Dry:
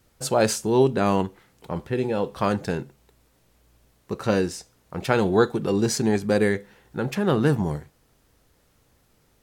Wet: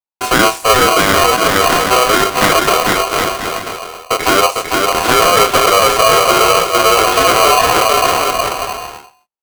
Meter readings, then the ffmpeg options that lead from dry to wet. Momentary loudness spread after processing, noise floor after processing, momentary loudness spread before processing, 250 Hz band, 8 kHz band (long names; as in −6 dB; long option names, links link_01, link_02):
10 LU, −53 dBFS, 13 LU, +3.0 dB, +18.0 dB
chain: -filter_complex "[0:a]bandreject=frequency=50:width_type=h:width=6,bandreject=frequency=100:width_type=h:width=6,bandreject=frequency=150:width_type=h:width=6,bandreject=frequency=200:width_type=h:width=6,deesser=0.85,agate=range=-56dB:threshold=-49dB:ratio=16:detection=peak,equalizer=frequency=5500:width=1.5:gain=-6,asplit=2[link_01][link_02];[link_02]acompressor=threshold=-29dB:ratio=6,volume=0dB[link_03];[link_01][link_03]amix=inputs=2:normalize=0,asoftclip=type=tanh:threshold=-14dB,flanger=delay=20:depth=7.6:speed=0.86,asplit=2[link_04][link_05];[link_05]aecho=0:1:450|765|985.5|1140|1248:0.631|0.398|0.251|0.158|0.1[link_06];[link_04][link_06]amix=inputs=2:normalize=0,alimiter=level_in=16.5dB:limit=-1dB:release=50:level=0:latency=1,aeval=exprs='val(0)*sgn(sin(2*PI*880*n/s))':channel_layout=same,volume=-1.5dB"